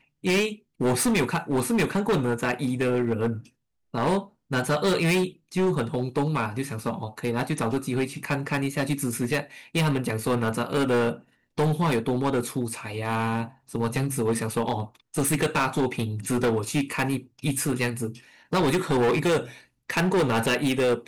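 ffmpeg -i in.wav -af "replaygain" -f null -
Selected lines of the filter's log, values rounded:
track_gain = +6.2 dB
track_peak = 0.082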